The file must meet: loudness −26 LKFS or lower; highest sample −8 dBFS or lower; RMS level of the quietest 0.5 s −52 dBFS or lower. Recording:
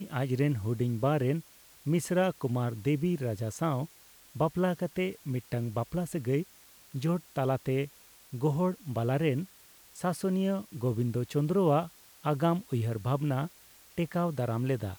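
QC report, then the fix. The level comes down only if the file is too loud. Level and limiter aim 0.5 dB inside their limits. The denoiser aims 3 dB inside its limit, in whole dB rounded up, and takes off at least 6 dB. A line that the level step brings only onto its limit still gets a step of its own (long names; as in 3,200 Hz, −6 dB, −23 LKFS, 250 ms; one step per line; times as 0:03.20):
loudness −31.0 LKFS: in spec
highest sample −15.5 dBFS: in spec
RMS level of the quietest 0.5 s −57 dBFS: in spec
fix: no processing needed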